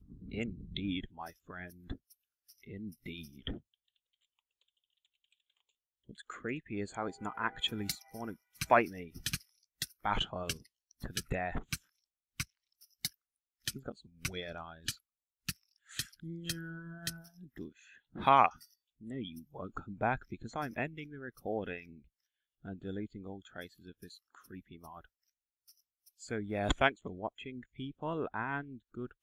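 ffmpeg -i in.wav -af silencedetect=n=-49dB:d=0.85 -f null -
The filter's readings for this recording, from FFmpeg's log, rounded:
silence_start: 3.58
silence_end: 6.09 | silence_duration: 2.51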